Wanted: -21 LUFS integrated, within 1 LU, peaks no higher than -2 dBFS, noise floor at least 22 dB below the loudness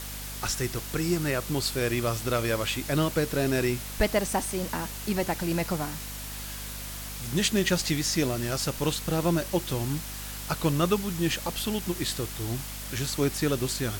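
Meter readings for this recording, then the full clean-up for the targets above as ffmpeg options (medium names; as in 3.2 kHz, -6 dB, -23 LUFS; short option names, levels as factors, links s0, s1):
hum 50 Hz; highest harmonic 250 Hz; hum level -39 dBFS; noise floor -38 dBFS; noise floor target -51 dBFS; loudness -28.5 LUFS; peak level -11.5 dBFS; loudness target -21.0 LUFS
-> -af "bandreject=f=50:t=h:w=6,bandreject=f=100:t=h:w=6,bandreject=f=150:t=h:w=6,bandreject=f=200:t=h:w=6,bandreject=f=250:t=h:w=6"
-af "afftdn=nr=13:nf=-38"
-af "volume=2.37"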